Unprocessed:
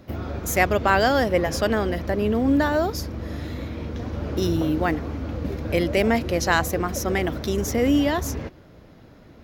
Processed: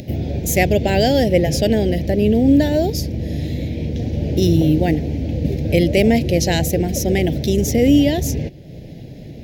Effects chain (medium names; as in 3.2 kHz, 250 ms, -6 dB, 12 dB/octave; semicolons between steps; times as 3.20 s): peaking EQ 140 Hz +8.5 dB 0.66 oct; upward compressor, threshold -33 dBFS; Butterworth band-stop 1.2 kHz, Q 0.79; trim +6 dB